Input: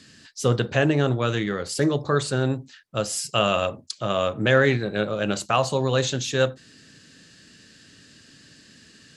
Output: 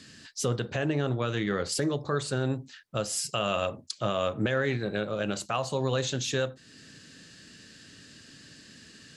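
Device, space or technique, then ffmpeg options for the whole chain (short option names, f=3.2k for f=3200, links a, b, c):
stacked limiters: -filter_complex "[0:a]alimiter=limit=-12.5dB:level=0:latency=1:release=420,alimiter=limit=-17dB:level=0:latency=1:release=339,asettb=1/sr,asplit=3[a][b][c];[a]atrim=end=0.854[d];[b]atrim=start=0.85:end=1.72,asetpts=PTS-STARTPTS,afade=t=in:d=0.004:c=qsin,afade=t=out:st=0.866:d=0.004:c=qsin,lowpass=7k[e];[c]atrim=start=1.716[f];[d][e]acrossfade=d=0.004:c1=hsin:c2=qsin[g];[g][f]acrossfade=d=0.004:c1=qsin:c2=hsin"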